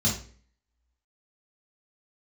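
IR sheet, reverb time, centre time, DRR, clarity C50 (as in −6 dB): 0.45 s, 29 ms, −5.5 dB, 6.0 dB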